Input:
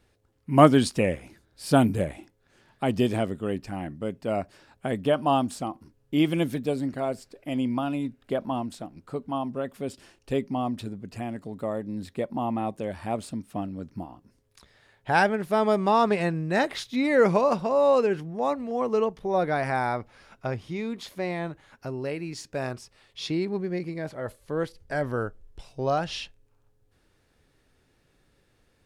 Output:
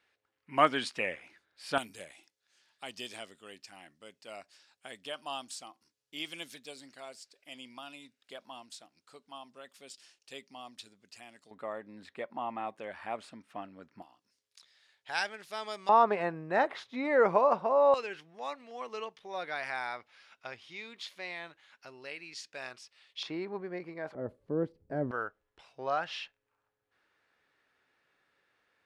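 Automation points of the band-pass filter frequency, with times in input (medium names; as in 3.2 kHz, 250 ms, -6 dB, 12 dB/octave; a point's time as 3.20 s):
band-pass filter, Q 1
2.1 kHz
from 1.78 s 5.3 kHz
from 11.51 s 1.7 kHz
from 14.02 s 4.7 kHz
from 15.89 s 960 Hz
from 17.94 s 3.2 kHz
from 23.23 s 1.1 kHz
from 24.15 s 270 Hz
from 25.11 s 1.6 kHz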